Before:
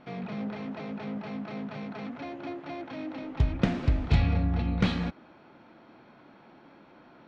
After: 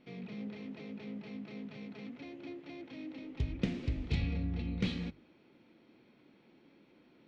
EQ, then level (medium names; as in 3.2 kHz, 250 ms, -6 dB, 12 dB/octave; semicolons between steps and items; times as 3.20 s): bass shelf 170 Hz -3.5 dB; high-order bell 1 kHz -11 dB; hum notches 50/100/150 Hz; -6.0 dB